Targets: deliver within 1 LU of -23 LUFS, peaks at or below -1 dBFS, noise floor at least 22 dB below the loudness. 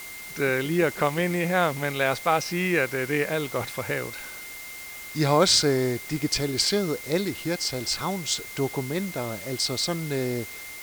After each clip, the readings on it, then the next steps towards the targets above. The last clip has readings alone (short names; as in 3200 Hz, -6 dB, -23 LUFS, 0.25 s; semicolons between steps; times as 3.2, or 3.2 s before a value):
steady tone 2100 Hz; tone level -40 dBFS; noise floor -39 dBFS; noise floor target -48 dBFS; loudness -25.5 LUFS; peak -8.0 dBFS; loudness target -23.0 LUFS
-> notch 2100 Hz, Q 30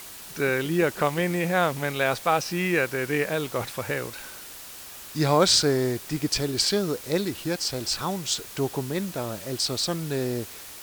steady tone none; noise floor -42 dBFS; noise floor target -48 dBFS
-> denoiser 6 dB, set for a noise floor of -42 dBFS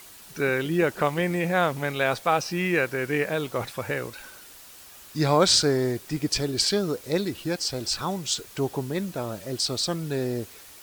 noise floor -47 dBFS; noise floor target -48 dBFS
-> denoiser 6 dB, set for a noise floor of -47 dBFS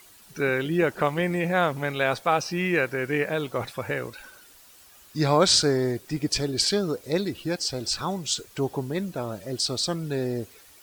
noise floor -52 dBFS; loudness -25.5 LUFS; peak -8.0 dBFS; loudness target -23.0 LUFS
-> gain +2.5 dB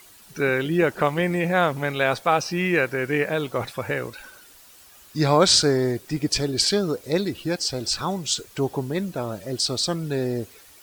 loudness -23.0 LUFS; peak -5.5 dBFS; noise floor -50 dBFS